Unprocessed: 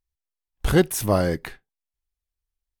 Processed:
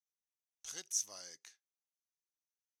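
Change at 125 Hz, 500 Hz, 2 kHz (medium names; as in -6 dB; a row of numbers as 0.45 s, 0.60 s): under -40 dB, -38.5 dB, -27.0 dB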